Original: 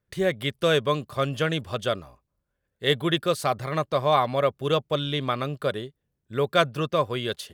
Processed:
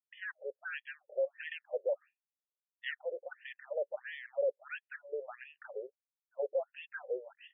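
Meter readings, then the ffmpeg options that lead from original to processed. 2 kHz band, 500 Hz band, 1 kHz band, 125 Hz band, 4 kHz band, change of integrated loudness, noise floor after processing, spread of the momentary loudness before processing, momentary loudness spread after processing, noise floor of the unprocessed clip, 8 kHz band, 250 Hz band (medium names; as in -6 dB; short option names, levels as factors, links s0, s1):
-11.0 dB, -12.0 dB, -26.0 dB, under -40 dB, -24.5 dB, -14.5 dB, under -85 dBFS, 7 LU, 11 LU, -80 dBFS, under -35 dB, under -30 dB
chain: -filter_complex "[0:a]agate=range=0.0224:threshold=0.0126:ratio=3:detection=peak,asplit=3[s0][s1][s2];[s0]bandpass=f=530:t=q:w=8,volume=1[s3];[s1]bandpass=f=1840:t=q:w=8,volume=0.501[s4];[s2]bandpass=f=2480:t=q:w=8,volume=0.355[s5];[s3][s4][s5]amix=inputs=3:normalize=0,aresample=11025,asoftclip=type=tanh:threshold=0.0211,aresample=44100,afftfilt=real='re*between(b*sr/1024,520*pow(2500/520,0.5+0.5*sin(2*PI*1.5*pts/sr))/1.41,520*pow(2500/520,0.5+0.5*sin(2*PI*1.5*pts/sr))*1.41)':imag='im*between(b*sr/1024,520*pow(2500/520,0.5+0.5*sin(2*PI*1.5*pts/sr))/1.41,520*pow(2500/520,0.5+0.5*sin(2*PI*1.5*pts/sr))*1.41)':win_size=1024:overlap=0.75,volume=2.11"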